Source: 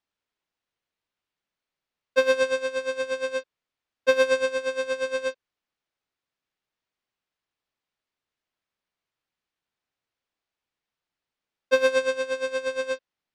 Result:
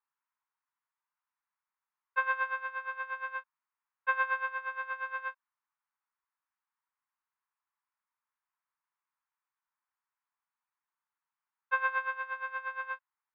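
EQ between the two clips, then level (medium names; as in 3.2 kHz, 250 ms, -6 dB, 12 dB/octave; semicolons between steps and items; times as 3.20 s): elliptic high-pass 940 Hz, stop band 80 dB; low-pass 1.3 kHz 12 dB/octave; distance through air 380 m; +6.5 dB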